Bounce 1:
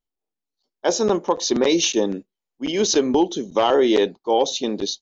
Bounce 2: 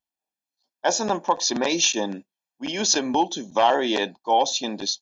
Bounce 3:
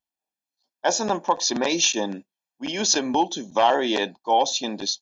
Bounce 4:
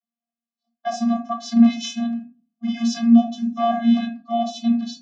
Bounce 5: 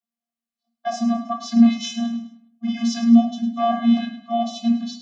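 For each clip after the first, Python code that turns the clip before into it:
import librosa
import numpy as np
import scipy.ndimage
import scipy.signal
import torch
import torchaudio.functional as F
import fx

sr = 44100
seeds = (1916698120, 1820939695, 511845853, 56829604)

y1 = fx.highpass(x, sr, hz=350.0, slope=6)
y1 = y1 + 0.64 * np.pad(y1, (int(1.2 * sr / 1000.0), 0))[:len(y1)]
y2 = y1
y3 = fx.vocoder(y2, sr, bands=32, carrier='square', carrier_hz=233.0)
y3 = fx.room_shoebox(y3, sr, seeds[0], volume_m3=150.0, walls='furnished', distance_m=1.1)
y4 = fx.echo_feedback(y3, sr, ms=104, feedback_pct=37, wet_db=-12)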